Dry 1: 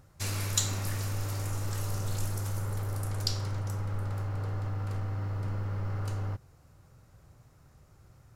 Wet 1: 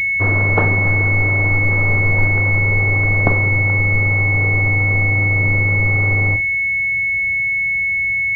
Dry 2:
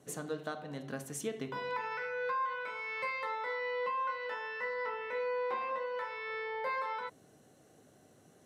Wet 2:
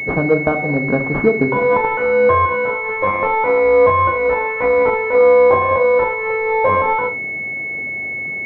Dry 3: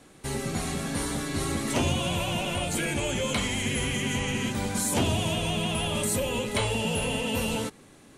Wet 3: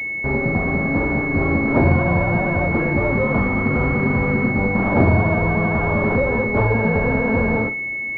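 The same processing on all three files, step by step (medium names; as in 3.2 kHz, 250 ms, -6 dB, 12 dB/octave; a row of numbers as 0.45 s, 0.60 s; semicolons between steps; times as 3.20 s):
flutter echo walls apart 8 m, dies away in 0.25 s; class-D stage that switches slowly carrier 2.2 kHz; peak normalisation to -1.5 dBFS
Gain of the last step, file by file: +16.0 dB, +24.0 dB, +10.5 dB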